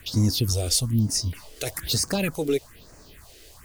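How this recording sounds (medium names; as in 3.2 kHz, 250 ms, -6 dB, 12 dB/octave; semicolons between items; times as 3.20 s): a quantiser's noise floor 8-bit, dither none; phasing stages 4, 1.1 Hz, lowest notch 160–3300 Hz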